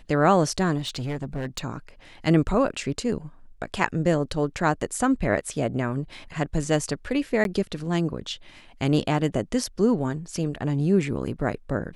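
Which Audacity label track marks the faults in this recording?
0.780000	1.600000	clipping −25.5 dBFS
7.440000	7.450000	drop-out 12 ms

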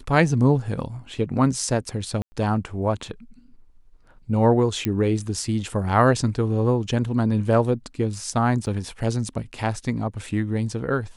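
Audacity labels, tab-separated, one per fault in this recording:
2.220000	2.320000	drop-out 100 ms
4.850000	4.850000	click −10 dBFS
8.660000	8.670000	drop-out 8.6 ms

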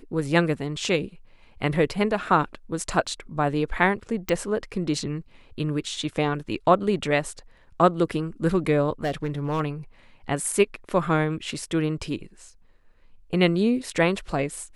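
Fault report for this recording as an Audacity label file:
4.290000	4.290000	click
9.040000	9.600000	clipping −21 dBFS

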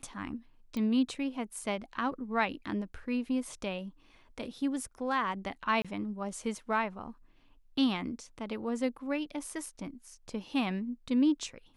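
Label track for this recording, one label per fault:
0.770000	0.770000	click −24 dBFS
5.820000	5.850000	drop-out 26 ms

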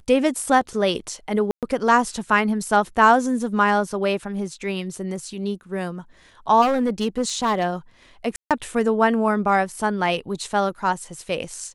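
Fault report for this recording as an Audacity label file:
1.510000	1.630000	drop-out 117 ms
6.610000	7.660000	clipping −16 dBFS
8.360000	8.510000	drop-out 147 ms

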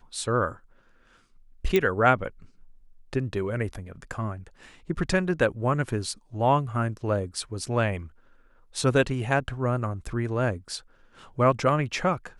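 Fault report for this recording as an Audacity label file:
1.760000	1.760000	click −10 dBFS

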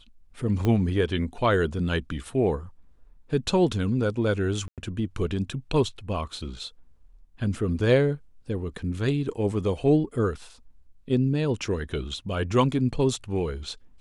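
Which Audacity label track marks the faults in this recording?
0.650000	0.650000	click −14 dBFS
4.680000	4.780000	drop-out 97 ms

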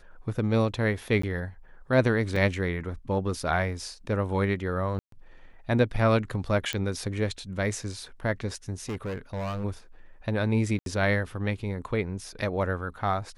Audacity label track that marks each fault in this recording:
1.220000	1.230000	drop-out 14 ms
2.360000	2.360000	drop-out 3.8 ms
4.990000	5.120000	drop-out 133 ms
6.730000	6.730000	click −14 dBFS
8.890000	9.650000	clipping −29 dBFS
10.790000	10.860000	drop-out 72 ms

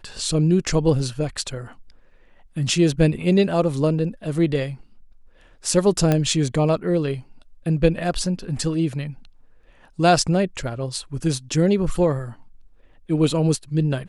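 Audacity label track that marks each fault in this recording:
6.120000	6.120000	click −7 dBFS

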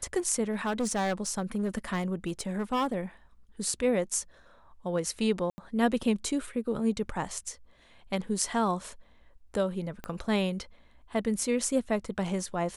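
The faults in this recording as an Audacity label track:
0.510000	2.950000	clipping −24.5 dBFS
5.500000	5.580000	drop-out 80 ms
10.040000	10.040000	click −22 dBFS

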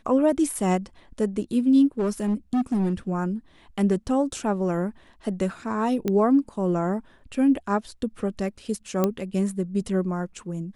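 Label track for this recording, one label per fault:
1.990000	2.930000	clipping −19.5 dBFS
6.080000	6.080000	click −13 dBFS
9.040000	9.040000	click −9 dBFS

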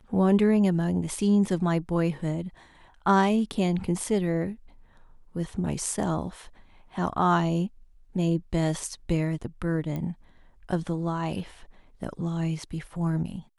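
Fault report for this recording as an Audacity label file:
9.960000	9.960000	click −21 dBFS

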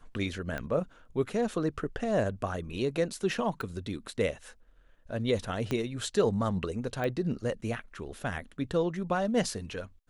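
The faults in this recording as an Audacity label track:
0.580000	0.580000	click −21 dBFS
3.610000	3.610000	click −23 dBFS
5.710000	5.710000	click −18 dBFS
7.040000	7.040000	click −21 dBFS

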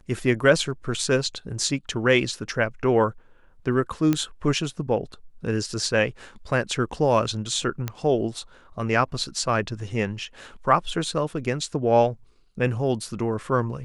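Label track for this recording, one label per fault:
4.130000	4.130000	click −10 dBFS
7.880000	7.880000	click −13 dBFS

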